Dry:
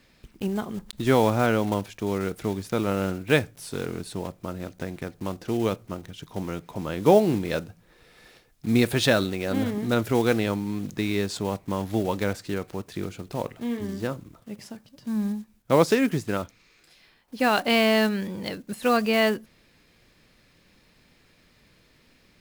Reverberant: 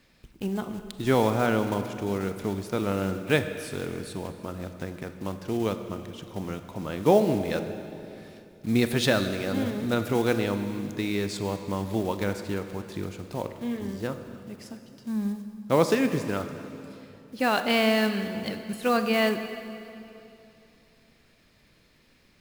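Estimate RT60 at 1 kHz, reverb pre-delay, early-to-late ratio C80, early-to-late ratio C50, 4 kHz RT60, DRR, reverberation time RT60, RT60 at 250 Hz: 2.7 s, 29 ms, 10.0 dB, 9.0 dB, 2.5 s, 8.5 dB, 2.8 s, 3.1 s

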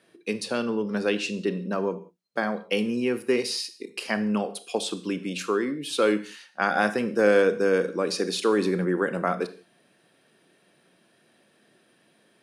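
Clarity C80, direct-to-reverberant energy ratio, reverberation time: 18.0 dB, 12.0 dB, non-exponential decay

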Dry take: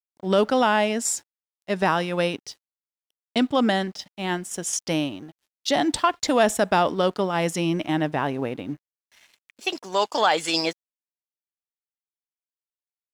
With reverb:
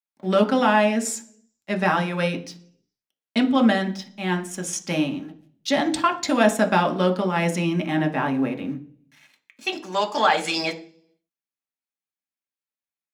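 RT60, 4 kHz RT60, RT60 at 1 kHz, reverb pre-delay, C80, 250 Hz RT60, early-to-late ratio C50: 0.45 s, 0.50 s, 0.40 s, 3 ms, 18.5 dB, 0.70 s, 14.0 dB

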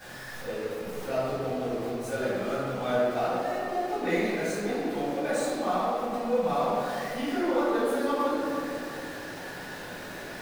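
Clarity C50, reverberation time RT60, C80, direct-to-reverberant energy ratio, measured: −3.5 dB, 2.7 s, −1.5 dB, −14.5 dB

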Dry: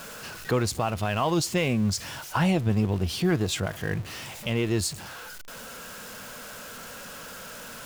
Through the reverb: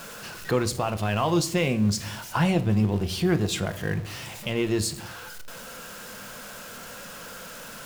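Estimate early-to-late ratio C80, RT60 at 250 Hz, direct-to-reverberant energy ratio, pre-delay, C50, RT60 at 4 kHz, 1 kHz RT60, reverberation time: 19.5 dB, 0.90 s, 9.5 dB, 6 ms, 16.0 dB, 0.40 s, 0.50 s, 0.60 s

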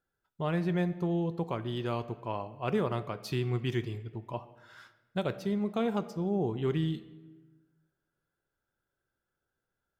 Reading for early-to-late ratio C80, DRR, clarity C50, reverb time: 16.5 dB, 11.5 dB, 15.0 dB, 1.2 s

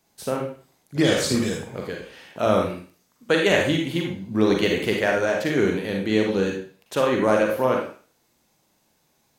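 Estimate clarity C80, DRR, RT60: 8.0 dB, 0.5 dB, 0.40 s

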